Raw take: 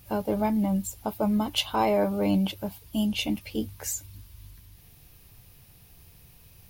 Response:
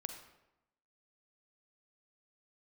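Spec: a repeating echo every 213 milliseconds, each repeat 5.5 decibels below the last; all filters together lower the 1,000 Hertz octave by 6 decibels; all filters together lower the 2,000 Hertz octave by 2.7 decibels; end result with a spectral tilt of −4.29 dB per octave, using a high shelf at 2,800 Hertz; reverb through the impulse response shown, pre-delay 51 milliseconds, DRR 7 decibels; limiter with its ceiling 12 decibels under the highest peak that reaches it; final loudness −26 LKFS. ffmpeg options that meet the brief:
-filter_complex "[0:a]equalizer=frequency=1000:width_type=o:gain=-7.5,equalizer=frequency=2000:width_type=o:gain=-7,highshelf=frequency=2800:gain=7,alimiter=limit=-21dB:level=0:latency=1,aecho=1:1:213|426|639|852|1065|1278|1491:0.531|0.281|0.149|0.079|0.0419|0.0222|0.0118,asplit=2[link_01][link_02];[1:a]atrim=start_sample=2205,adelay=51[link_03];[link_02][link_03]afir=irnorm=-1:irlink=0,volume=-5dB[link_04];[link_01][link_04]amix=inputs=2:normalize=0,volume=2.5dB"

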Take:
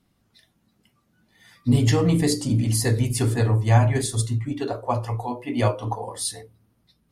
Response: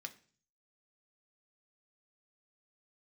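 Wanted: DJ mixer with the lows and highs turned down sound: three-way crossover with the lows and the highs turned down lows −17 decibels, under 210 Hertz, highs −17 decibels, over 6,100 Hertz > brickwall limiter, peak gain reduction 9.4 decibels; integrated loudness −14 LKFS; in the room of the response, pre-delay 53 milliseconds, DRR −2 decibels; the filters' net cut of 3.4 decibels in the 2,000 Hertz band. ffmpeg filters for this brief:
-filter_complex "[0:a]equalizer=frequency=2000:width_type=o:gain=-4,asplit=2[link_01][link_02];[1:a]atrim=start_sample=2205,adelay=53[link_03];[link_02][link_03]afir=irnorm=-1:irlink=0,volume=5dB[link_04];[link_01][link_04]amix=inputs=2:normalize=0,acrossover=split=210 6100:gain=0.141 1 0.141[link_05][link_06][link_07];[link_05][link_06][link_07]amix=inputs=3:normalize=0,volume=14.5dB,alimiter=limit=-4dB:level=0:latency=1"

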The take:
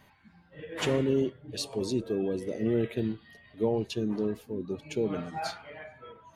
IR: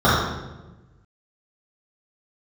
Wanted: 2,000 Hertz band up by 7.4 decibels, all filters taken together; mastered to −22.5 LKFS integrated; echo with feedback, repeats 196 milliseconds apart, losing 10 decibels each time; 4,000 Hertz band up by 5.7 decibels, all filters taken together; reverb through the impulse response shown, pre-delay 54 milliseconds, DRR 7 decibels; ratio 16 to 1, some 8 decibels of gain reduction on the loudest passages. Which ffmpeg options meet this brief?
-filter_complex "[0:a]equalizer=frequency=2000:width_type=o:gain=8,equalizer=frequency=4000:width_type=o:gain=4.5,acompressor=threshold=-29dB:ratio=16,aecho=1:1:196|392|588|784:0.316|0.101|0.0324|0.0104,asplit=2[link_01][link_02];[1:a]atrim=start_sample=2205,adelay=54[link_03];[link_02][link_03]afir=irnorm=-1:irlink=0,volume=-32.5dB[link_04];[link_01][link_04]amix=inputs=2:normalize=0,volume=11dB"

